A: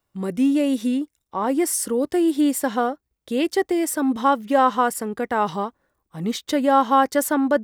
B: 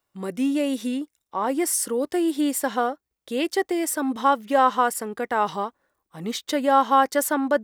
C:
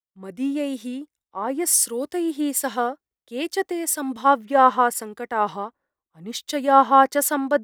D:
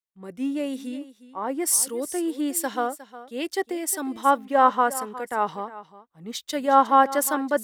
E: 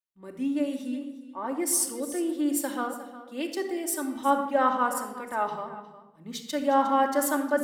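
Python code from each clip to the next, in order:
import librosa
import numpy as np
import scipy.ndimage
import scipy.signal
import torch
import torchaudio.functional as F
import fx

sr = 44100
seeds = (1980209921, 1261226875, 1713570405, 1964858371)

y1 = fx.low_shelf(x, sr, hz=240.0, db=-10.5)
y2 = fx.band_widen(y1, sr, depth_pct=70)
y3 = y2 + 10.0 ** (-16.0 / 20.0) * np.pad(y2, (int(359 * sr / 1000.0), 0))[:len(y2)]
y3 = y3 * librosa.db_to_amplitude(-2.5)
y4 = fx.room_shoebox(y3, sr, seeds[0], volume_m3=3700.0, walls='furnished', distance_m=2.6)
y4 = y4 * librosa.db_to_amplitude(-5.5)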